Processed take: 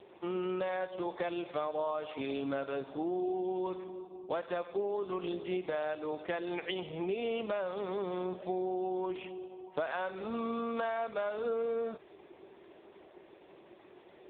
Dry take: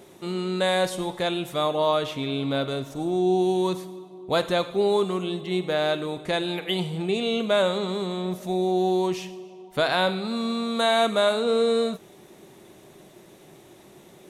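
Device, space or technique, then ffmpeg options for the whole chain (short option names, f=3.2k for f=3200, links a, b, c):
voicemail: -af "highpass=360,lowpass=3.1k,acompressor=threshold=-30dB:ratio=10" -ar 8000 -c:a libopencore_amrnb -b:a 5150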